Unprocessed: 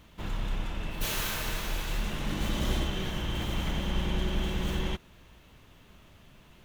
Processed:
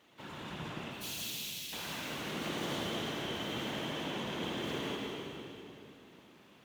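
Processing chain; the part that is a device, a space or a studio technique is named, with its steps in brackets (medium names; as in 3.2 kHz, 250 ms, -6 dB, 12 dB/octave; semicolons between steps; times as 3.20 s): 0.88–1.73 s: inverse Chebyshev high-pass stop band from 1.1 kHz, stop band 50 dB; treble shelf 7.6 kHz -5.5 dB; two-band feedback delay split 2.2 kHz, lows 121 ms, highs 163 ms, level -7 dB; whispering ghost (whisper effect; high-pass 270 Hz 12 dB/octave; reverberation RT60 2.9 s, pre-delay 71 ms, DRR 0.5 dB); trim -5 dB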